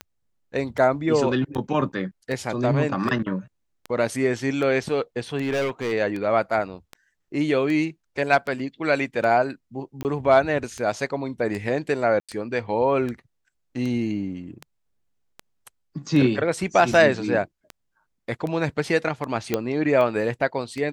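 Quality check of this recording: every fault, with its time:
scratch tick 78 rpm −19 dBFS
0:05.41–0:05.93: clipping −20.5 dBFS
0:10.03–0:10.05: drop-out 19 ms
0:12.20–0:12.29: drop-out 86 ms
0:19.54: click −8 dBFS

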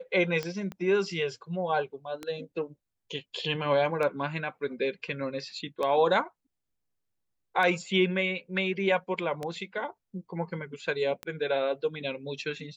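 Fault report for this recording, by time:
scratch tick 33 1/3 rpm −19 dBFS
0:00.72: click −25 dBFS

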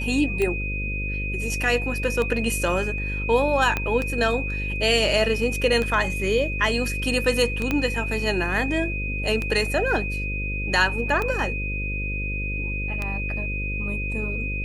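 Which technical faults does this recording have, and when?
mains buzz 50 Hz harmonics 11 −29 dBFS
scratch tick 33 1/3 rpm −13 dBFS
whistle 2,500 Hz −29 dBFS
0:03.77: click −10 dBFS
0:07.71: click −10 dBFS

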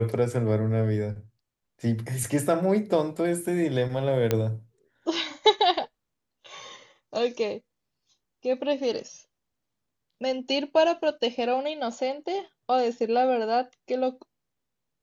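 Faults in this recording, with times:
0:04.31: click −9 dBFS

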